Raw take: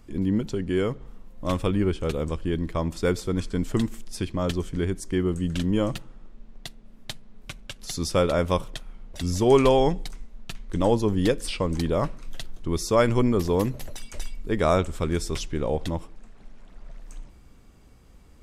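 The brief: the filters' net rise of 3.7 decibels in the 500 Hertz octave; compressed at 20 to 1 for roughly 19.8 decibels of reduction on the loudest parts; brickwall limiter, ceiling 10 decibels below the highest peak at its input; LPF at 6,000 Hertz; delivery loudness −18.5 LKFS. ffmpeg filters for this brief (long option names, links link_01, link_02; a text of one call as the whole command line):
ffmpeg -i in.wav -af "lowpass=6000,equalizer=frequency=500:width_type=o:gain=4.5,acompressor=threshold=-30dB:ratio=20,volume=22dB,alimiter=limit=-7dB:level=0:latency=1" out.wav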